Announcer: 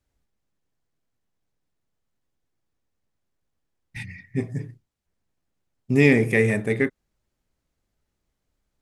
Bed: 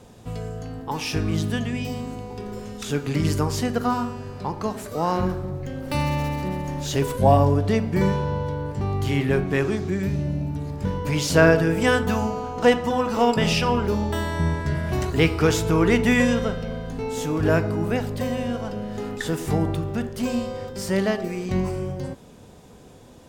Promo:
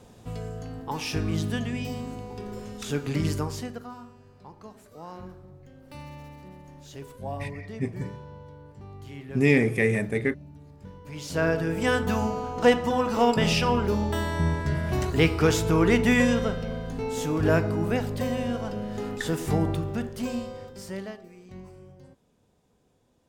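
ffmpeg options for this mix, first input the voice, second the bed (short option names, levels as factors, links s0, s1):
-filter_complex "[0:a]adelay=3450,volume=0.668[s0];[1:a]volume=4.47,afade=t=out:st=3.19:d=0.68:silence=0.177828,afade=t=in:st=11.05:d=1.21:silence=0.149624,afade=t=out:st=19.71:d=1.53:silence=0.125893[s1];[s0][s1]amix=inputs=2:normalize=0"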